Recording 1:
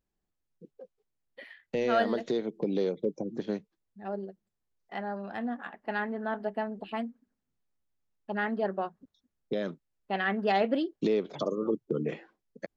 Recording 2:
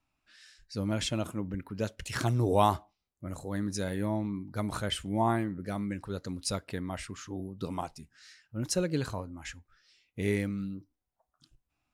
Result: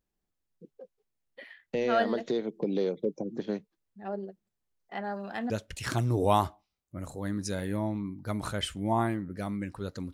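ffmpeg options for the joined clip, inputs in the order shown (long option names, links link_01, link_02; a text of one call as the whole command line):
ffmpeg -i cue0.wav -i cue1.wav -filter_complex "[0:a]asettb=1/sr,asplit=3[link_01][link_02][link_03];[link_01]atrim=end=5.044[link_04];[link_02]atrim=start=5.04:end=5.5,asetpts=PTS-STARTPTS,afade=type=in:duration=0.004:curve=qsin,afade=type=out:start_time=0.456:duration=0.004:curve=qsin,highshelf=frequency=3400:gain=11.5[link_05];[link_03]atrim=start=5.496[link_06];[link_04][link_05]acrossfade=duration=0.004:curve1=hsin:curve2=qsin[link_07];[link_07][link_06]acrossfade=duration=0.004:curve1=qsin:curve2=hsin,apad=whole_dur=10.13,atrim=end=10.13,atrim=end=5.502[link_08];[1:a]atrim=start=1.788:end=6.42[link_09];[link_08][link_09]acrossfade=duration=0.004:curve1=hsin:curve2=hsin" out.wav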